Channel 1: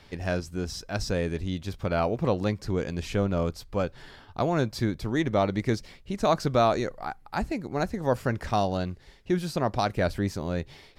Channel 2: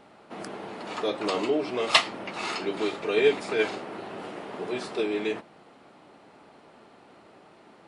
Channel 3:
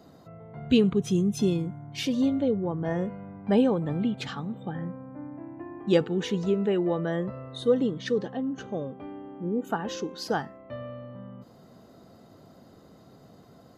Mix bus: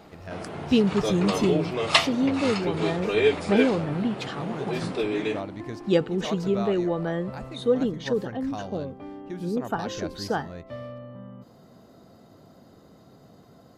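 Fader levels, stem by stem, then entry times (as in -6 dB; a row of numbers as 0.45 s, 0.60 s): -11.0 dB, +0.5 dB, +0.5 dB; 0.00 s, 0.00 s, 0.00 s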